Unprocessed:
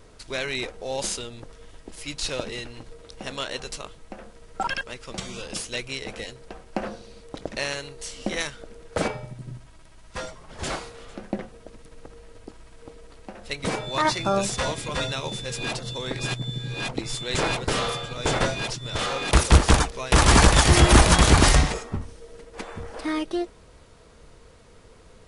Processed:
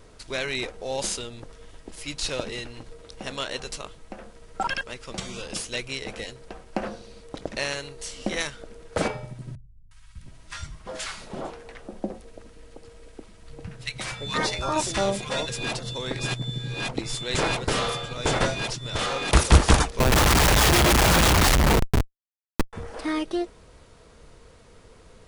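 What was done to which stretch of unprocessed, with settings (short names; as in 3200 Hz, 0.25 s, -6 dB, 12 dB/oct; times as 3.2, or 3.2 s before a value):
9.55–15.49 three bands offset in time lows, highs, mids 0.36/0.71 s, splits 150/1100 Hz
19.99–22.73 Schmitt trigger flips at -27.5 dBFS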